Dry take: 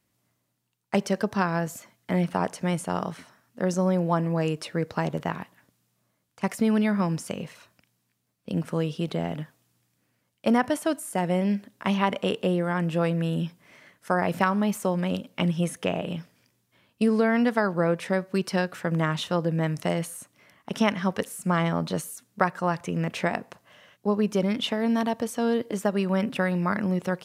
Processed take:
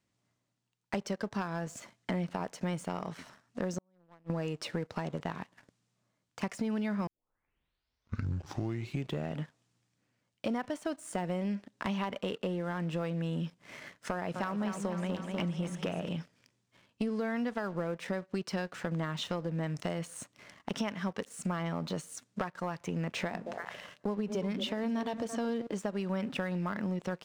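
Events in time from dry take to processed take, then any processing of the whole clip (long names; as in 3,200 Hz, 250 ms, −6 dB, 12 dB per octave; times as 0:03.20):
0:03.78–0:04.30: gate with flip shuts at −19 dBFS, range −37 dB
0:07.07: tape start 2.34 s
0:14.11–0:16.09: feedback echo with a swinging delay time 246 ms, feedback 60%, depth 53 cents, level −9.5 dB
0:23.21–0:25.67: echo through a band-pass that steps 112 ms, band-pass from 190 Hz, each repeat 1.4 octaves, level −6.5 dB
whole clip: low-pass filter 8,200 Hz 24 dB per octave; downward compressor 6 to 1, threshold −38 dBFS; leveller curve on the samples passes 2; level −1.5 dB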